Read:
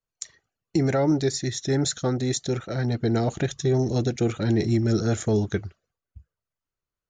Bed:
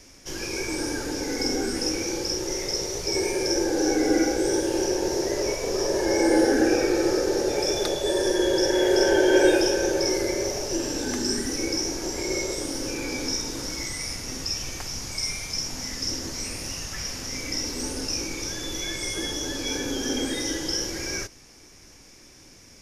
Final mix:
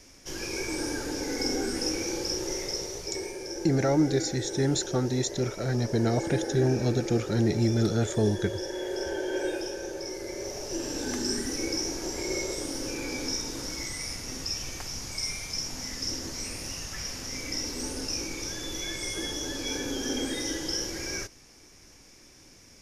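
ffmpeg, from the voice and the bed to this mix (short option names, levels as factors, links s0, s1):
-filter_complex "[0:a]adelay=2900,volume=0.75[s0];[1:a]volume=2,afade=t=out:st=2.48:d=0.9:silence=0.334965,afade=t=in:st=10.18:d=0.91:silence=0.354813[s1];[s0][s1]amix=inputs=2:normalize=0"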